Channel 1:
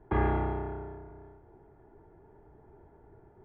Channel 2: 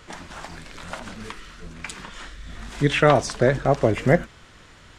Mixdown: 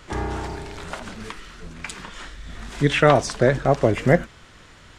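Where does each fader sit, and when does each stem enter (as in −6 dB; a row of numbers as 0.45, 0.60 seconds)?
−0.5, +1.0 decibels; 0.00, 0.00 seconds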